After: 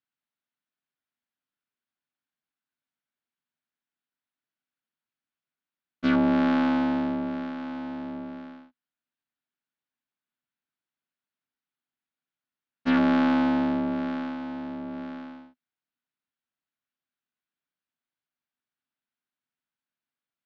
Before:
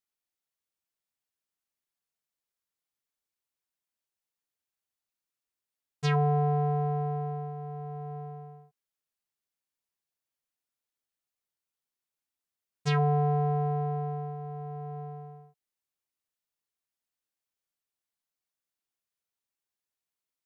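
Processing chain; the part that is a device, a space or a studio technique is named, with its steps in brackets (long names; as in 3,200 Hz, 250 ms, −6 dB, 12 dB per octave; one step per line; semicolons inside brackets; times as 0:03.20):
ring modulator pedal into a guitar cabinet (ring modulator with a square carrier 110 Hz; loudspeaker in its box 94–3,900 Hz, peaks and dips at 150 Hz +5 dB, 250 Hz +9 dB, 480 Hz −6 dB, 1,500 Hz +6 dB)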